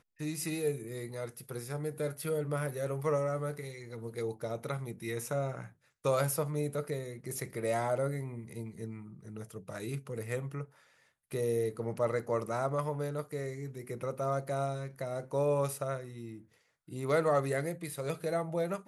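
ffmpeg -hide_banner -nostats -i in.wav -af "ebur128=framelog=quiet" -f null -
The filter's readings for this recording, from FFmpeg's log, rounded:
Integrated loudness:
  I:         -35.1 LUFS
  Threshold: -45.4 LUFS
Loudness range:
  LRA:         3.9 LU
  Threshold: -55.5 LUFS
  LRA low:   -37.6 LUFS
  LRA high:  -33.7 LUFS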